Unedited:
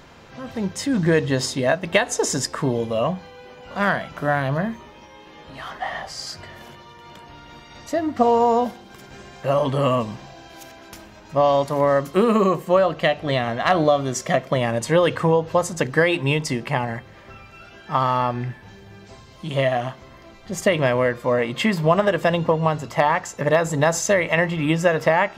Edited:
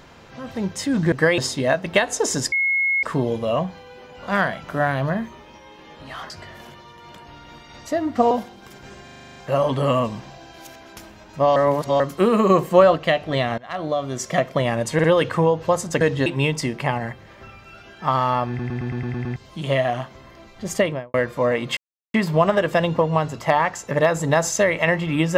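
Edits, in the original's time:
1.12–1.37 s: swap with 15.87–16.13 s
2.51 s: add tone 2.17 kHz -17 dBFS 0.51 s
5.78–6.31 s: delete
8.32–8.59 s: delete
9.32 s: stutter 0.04 s, 9 plays
11.52–11.96 s: reverse
12.46–12.92 s: gain +4 dB
13.54–14.35 s: fade in, from -21 dB
14.90 s: stutter 0.05 s, 3 plays
18.35 s: stutter in place 0.11 s, 8 plays
20.62–21.01 s: studio fade out
21.64 s: insert silence 0.37 s

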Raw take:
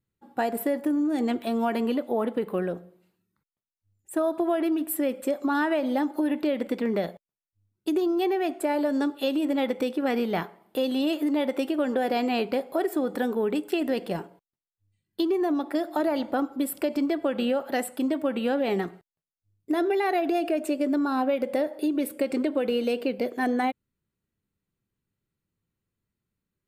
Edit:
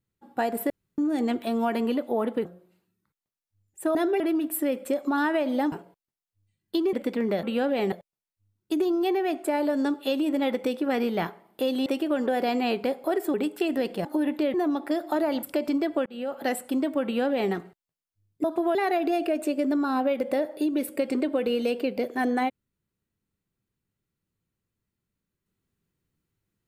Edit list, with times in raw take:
0.70–0.98 s: room tone
2.45–2.76 s: delete
4.26–4.57 s: swap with 19.72–19.97 s
6.09–6.58 s: swap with 14.17–15.38 s
11.02–11.54 s: delete
13.02–13.46 s: delete
16.27–16.71 s: delete
17.34–17.73 s: fade in
18.32–18.81 s: copy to 7.08 s

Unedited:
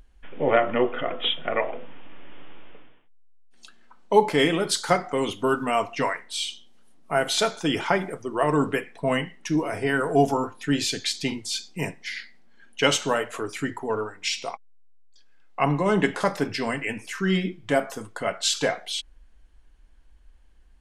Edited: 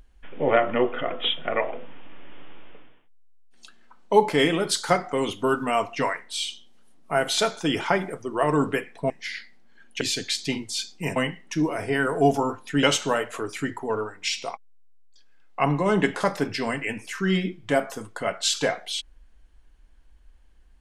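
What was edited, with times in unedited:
9.10–10.77 s: swap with 11.92–12.83 s

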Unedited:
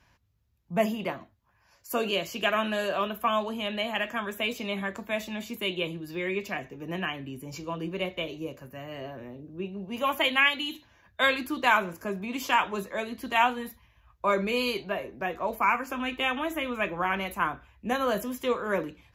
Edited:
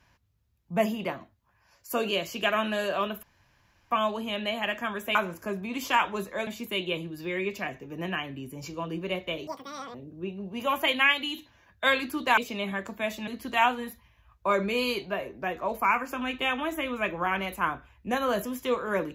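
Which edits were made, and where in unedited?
3.23 s: insert room tone 0.68 s
4.47–5.37 s: swap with 11.74–13.06 s
8.37–9.31 s: speed 198%

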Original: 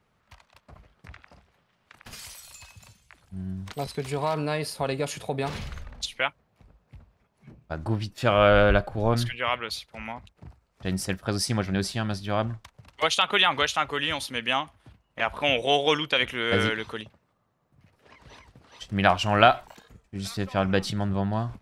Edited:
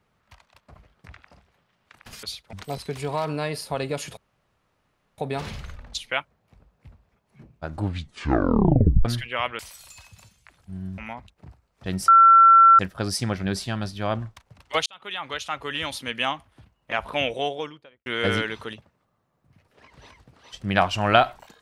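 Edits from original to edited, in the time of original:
2.23–3.62 s: swap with 9.67–9.97 s
5.26 s: insert room tone 1.01 s
7.81 s: tape stop 1.32 s
11.07 s: add tone 1.35 kHz -9 dBFS 0.71 s
13.14–14.26 s: fade in
15.32–16.34 s: studio fade out

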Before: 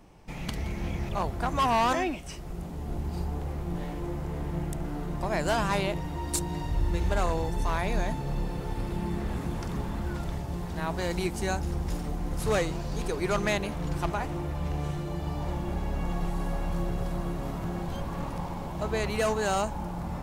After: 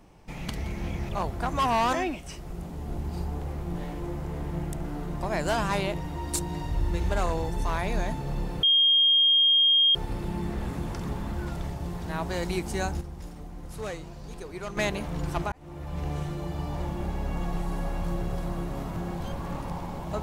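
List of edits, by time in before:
8.63 s: add tone 3.23 kHz -17 dBFS 1.32 s
11.69–13.45 s: gain -9 dB
14.20–14.75 s: fade in

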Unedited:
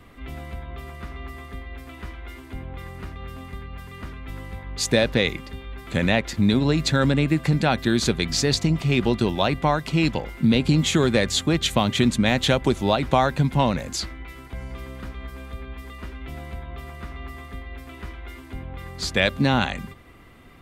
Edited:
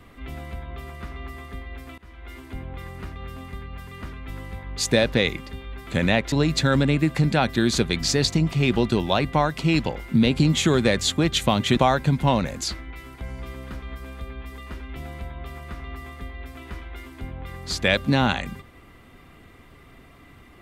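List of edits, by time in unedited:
1.98–2.37 s: fade in, from -22 dB
6.32–6.61 s: delete
12.06–13.09 s: delete

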